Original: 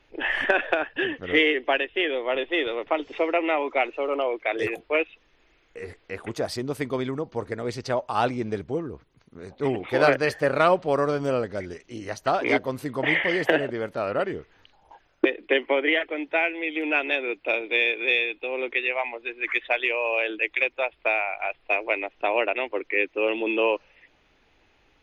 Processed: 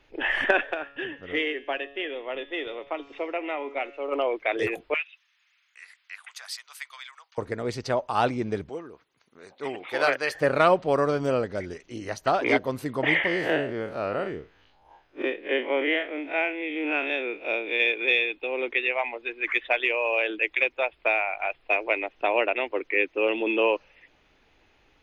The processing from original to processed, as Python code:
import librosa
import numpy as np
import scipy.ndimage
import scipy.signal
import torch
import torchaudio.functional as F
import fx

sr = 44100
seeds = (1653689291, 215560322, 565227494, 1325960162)

y = fx.comb_fb(x, sr, f0_hz=140.0, decay_s=0.76, harmonics='all', damping=0.0, mix_pct=60, at=(0.62, 4.11), fade=0.02)
y = fx.bessel_highpass(y, sr, hz=1800.0, order=6, at=(4.94, 7.38))
y = fx.highpass(y, sr, hz=910.0, slope=6, at=(8.69, 10.35))
y = fx.spec_blur(y, sr, span_ms=90.0, at=(13.27, 17.8))